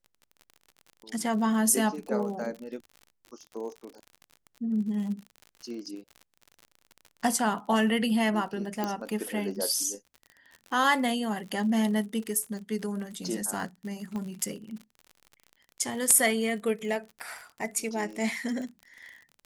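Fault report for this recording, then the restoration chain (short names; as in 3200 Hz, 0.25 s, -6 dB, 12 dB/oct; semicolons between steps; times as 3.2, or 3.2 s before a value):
crackle 50/s -37 dBFS
8.84 pop -16 dBFS
14.16 pop -24 dBFS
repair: de-click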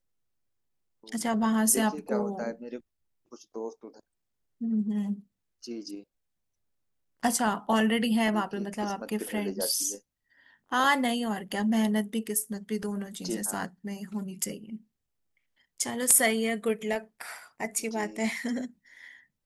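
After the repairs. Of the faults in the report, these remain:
14.16 pop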